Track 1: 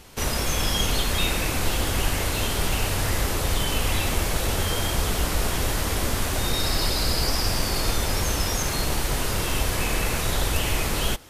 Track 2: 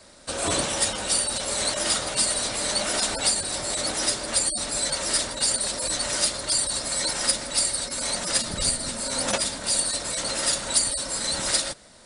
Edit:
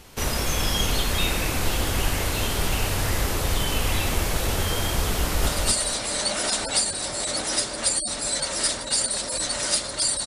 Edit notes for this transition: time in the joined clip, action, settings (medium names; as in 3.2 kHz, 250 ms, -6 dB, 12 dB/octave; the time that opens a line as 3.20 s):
track 1
5.18–5.47 s: echo throw 240 ms, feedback 25%, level -2.5 dB
5.47 s: go over to track 2 from 1.97 s